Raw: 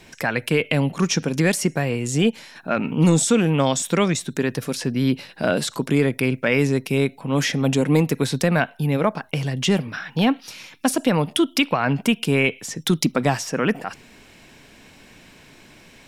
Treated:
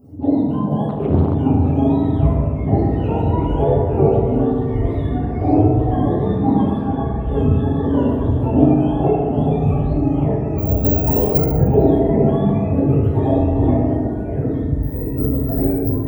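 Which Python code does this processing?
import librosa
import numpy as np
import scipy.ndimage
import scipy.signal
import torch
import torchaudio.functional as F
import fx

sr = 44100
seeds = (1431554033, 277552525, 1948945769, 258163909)

y = fx.octave_mirror(x, sr, pivot_hz=680.0)
y = fx.curve_eq(y, sr, hz=(220.0, 410.0, 760.0, 1600.0, 2800.0, 11000.0), db=(0, 8, 0, -26, -26, -3))
y = fx.echo_stepped(y, sr, ms=426, hz=620.0, octaves=1.4, feedback_pct=70, wet_db=-3.0)
y = fx.resample_bad(y, sr, factor=2, down='none', up='zero_stuff', at=(10.58, 11.38))
y = fx.echo_pitch(y, sr, ms=705, semitones=-5, count=3, db_per_echo=-3.0)
y = fx.air_absorb(y, sr, metres=87.0, at=(6.88, 7.29))
y = fx.rev_fdn(y, sr, rt60_s=1.6, lf_ratio=1.2, hf_ratio=0.5, size_ms=22.0, drr_db=-7.0)
y = fx.doppler_dist(y, sr, depth_ms=0.92, at=(0.89, 1.35))
y = F.gain(torch.from_numpy(y), -5.0).numpy()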